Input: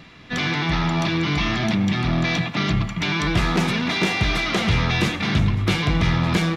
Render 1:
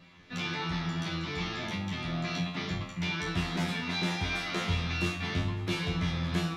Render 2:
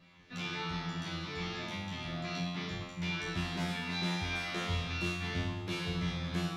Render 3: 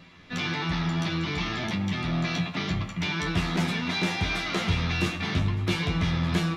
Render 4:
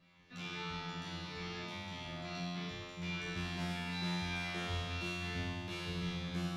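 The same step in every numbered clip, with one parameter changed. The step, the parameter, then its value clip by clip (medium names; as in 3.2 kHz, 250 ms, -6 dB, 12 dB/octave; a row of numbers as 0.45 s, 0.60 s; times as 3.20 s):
feedback comb, decay: 0.38 s, 0.85 s, 0.15 s, 2 s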